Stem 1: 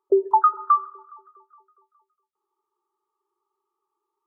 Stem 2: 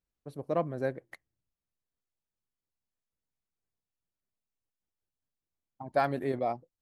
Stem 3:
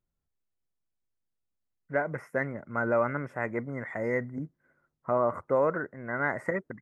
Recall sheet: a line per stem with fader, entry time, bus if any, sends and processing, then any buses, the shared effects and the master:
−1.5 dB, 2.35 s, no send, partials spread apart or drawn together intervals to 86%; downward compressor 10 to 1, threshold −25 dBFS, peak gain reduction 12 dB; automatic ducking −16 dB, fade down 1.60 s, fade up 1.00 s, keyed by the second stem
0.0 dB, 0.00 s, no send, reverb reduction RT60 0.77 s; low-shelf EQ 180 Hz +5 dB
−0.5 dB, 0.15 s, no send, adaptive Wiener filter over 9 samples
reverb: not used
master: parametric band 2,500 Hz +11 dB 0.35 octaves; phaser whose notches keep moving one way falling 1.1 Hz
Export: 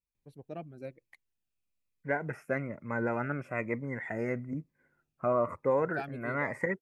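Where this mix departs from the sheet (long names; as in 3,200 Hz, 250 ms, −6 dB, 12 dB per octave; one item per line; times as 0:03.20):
stem 1: muted
stem 2 0.0 dB → −10.0 dB
stem 3: missing adaptive Wiener filter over 9 samples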